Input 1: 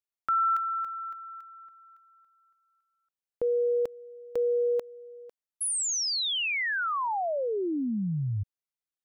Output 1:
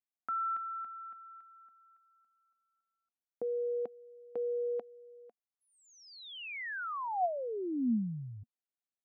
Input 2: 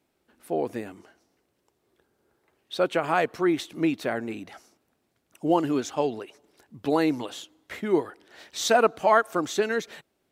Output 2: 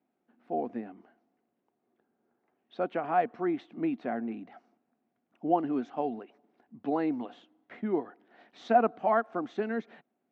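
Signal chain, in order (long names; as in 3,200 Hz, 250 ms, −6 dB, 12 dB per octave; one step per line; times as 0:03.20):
band-pass filter 170–2,200 Hz
high-frequency loss of the air 61 metres
hollow resonant body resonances 230/720 Hz, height 11 dB, ringing for 45 ms
level −8.5 dB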